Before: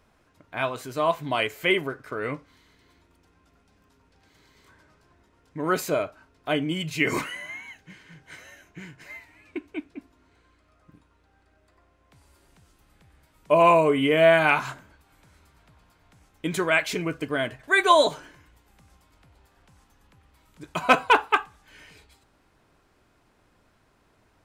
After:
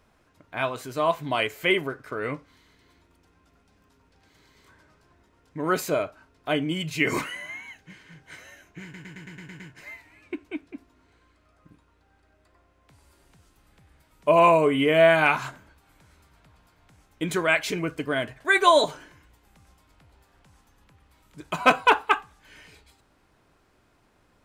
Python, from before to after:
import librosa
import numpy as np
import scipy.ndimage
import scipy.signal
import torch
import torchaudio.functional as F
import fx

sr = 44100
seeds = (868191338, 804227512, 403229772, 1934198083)

y = fx.edit(x, sr, fx.stutter(start_s=8.83, slice_s=0.11, count=8), tone=tone)